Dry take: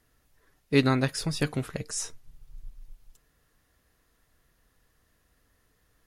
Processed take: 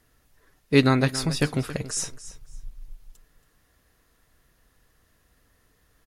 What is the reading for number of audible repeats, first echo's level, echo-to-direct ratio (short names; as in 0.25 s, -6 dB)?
2, -15.0 dB, -15.0 dB